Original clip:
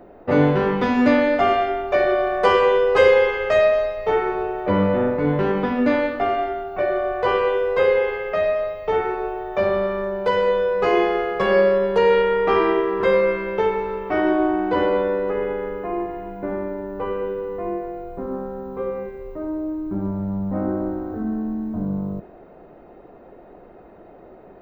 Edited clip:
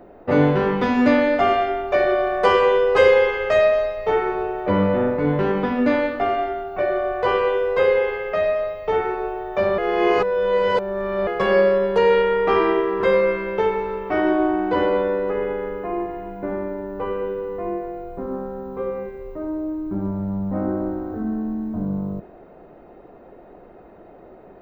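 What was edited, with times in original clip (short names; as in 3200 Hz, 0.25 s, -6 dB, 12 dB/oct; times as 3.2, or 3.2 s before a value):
9.78–11.27 reverse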